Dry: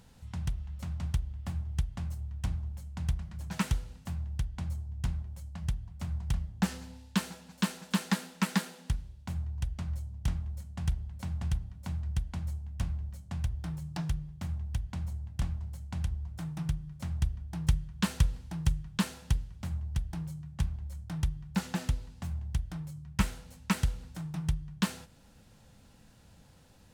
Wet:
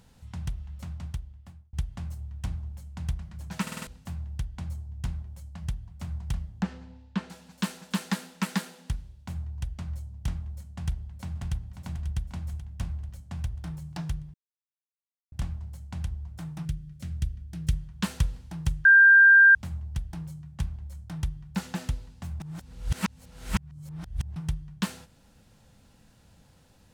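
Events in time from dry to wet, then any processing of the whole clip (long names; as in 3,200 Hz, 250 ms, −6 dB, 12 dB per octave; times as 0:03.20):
0:00.78–0:01.73: fade out
0:03.62: stutter in place 0.05 s, 5 plays
0:06.62–0:07.30: head-to-tape spacing loss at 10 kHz 25 dB
0:10.81–0:11.83: delay throw 540 ms, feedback 60%, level −9 dB
0:14.34–0:15.32: silence
0:16.65–0:17.73: parametric band 930 Hz −14.5 dB 0.88 octaves
0:18.85–0:19.55: beep over 1,590 Hz −11.5 dBFS
0:22.40–0:24.36: reverse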